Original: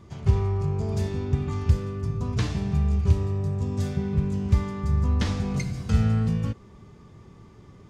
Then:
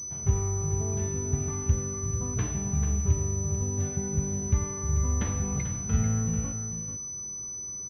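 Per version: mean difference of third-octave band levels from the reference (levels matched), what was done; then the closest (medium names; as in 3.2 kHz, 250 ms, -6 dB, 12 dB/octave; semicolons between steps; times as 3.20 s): 4.5 dB: delay 441 ms -9 dB; class-D stage that switches slowly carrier 6 kHz; trim -4.5 dB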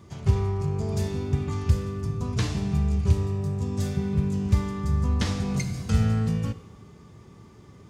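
2.0 dB: high-pass 58 Hz; treble shelf 6.7 kHz +8 dB; Schroeder reverb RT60 1.3 s, combs from 30 ms, DRR 14 dB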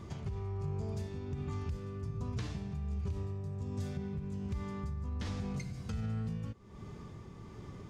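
3.5 dB: peak limiter -17 dBFS, peak gain reduction 8.5 dB; compression 2.5:1, threshold -43 dBFS, peak gain reduction 14.5 dB; tremolo 1.3 Hz, depth 30%; trim +2.5 dB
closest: second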